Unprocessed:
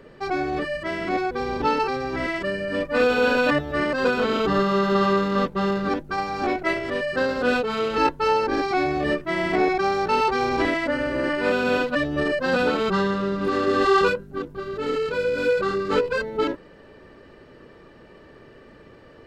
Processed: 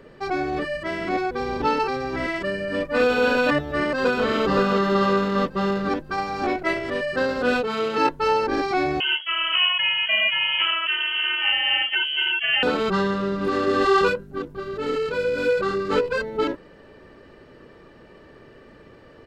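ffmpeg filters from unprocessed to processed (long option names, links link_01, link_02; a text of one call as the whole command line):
ffmpeg -i in.wav -filter_complex "[0:a]asplit=2[link_01][link_02];[link_02]afade=type=in:start_time=3.67:duration=0.01,afade=type=out:start_time=4.26:duration=0.01,aecho=0:1:520|1040|1560|2080|2600:0.473151|0.189261|0.0757042|0.0302817|0.0121127[link_03];[link_01][link_03]amix=inputs=2:normalize=0,asettb=1/sr,asplit=3[link_04][link_05][link_06];[link_04]atrim=end=7.674[link_07];[link_05]atrim=start=7.67:end=8.1,asetpts=PTS-STARTPTS,afade=type=in:duration=0.004:curve=qsin,afade=type=out:start_time=0.426:duration=0.004:curve=qsin,highpass=120[link_08];[link_06]atrim=start=8.096[link_09];[link_07][link_08]acrossfade=duration=0.004:curve1=hsin:curve2=qsin[link_10];[link_10][link_09]acrossfade=duration=0.004:curve1=qsin:curve2=hsin,asettb=1/sr,asplit=3[link_11][link_12][link_13];[link_11]atrim=end=9.004[link_14];[link_12]atrim=start=9:end=12.63,asetpts=PTS-STARTPTS,afade=type=in:duration=0.004:curve=qsin,afade=type=out:start_time=3.626:duration=0.004:curve=qsin,lowpass=frequency=2800:width_type=q:width=0.5098,lowpass=frequency=2800:width_type=q:width=0.6013,lowpass=frequency=2800:width_type=q:width=0.9,lowpass=frequency=2800:width_type=q:width=2.563,afreqshift=-3300[link_15];[link_13]atrim=start=12.626[link_16];[link_14][link_15]acrossfade=duration=0.004:curve1=hsin:curve2=qsin[link_17];[link_17][link_16]acrossfade=duration=0.004:curve1=qsin:curve2=hsin" out.wav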